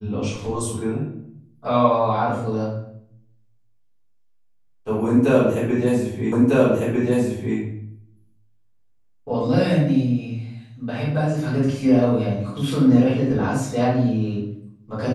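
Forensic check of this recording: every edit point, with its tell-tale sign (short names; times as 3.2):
6.32 repeat of the last 1.25 s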